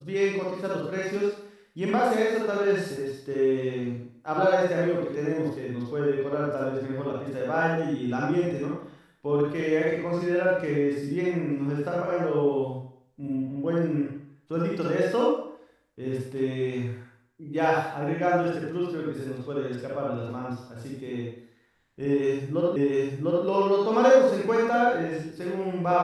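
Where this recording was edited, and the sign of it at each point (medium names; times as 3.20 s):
22.76 s: repeat of the last 0.7 s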